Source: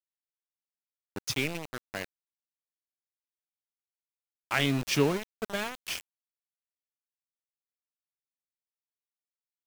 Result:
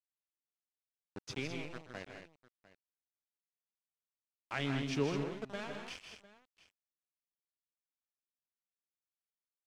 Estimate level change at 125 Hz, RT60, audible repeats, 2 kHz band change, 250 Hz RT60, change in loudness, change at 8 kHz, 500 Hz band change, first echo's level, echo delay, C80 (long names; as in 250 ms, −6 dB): −6.5 dB, no reverb audible, 4, −10.0 dB, no reverb audible, −8.5 dB, −14.5 dB, −7.5 dB, −14.0 dB, 127 ms, no reverb audible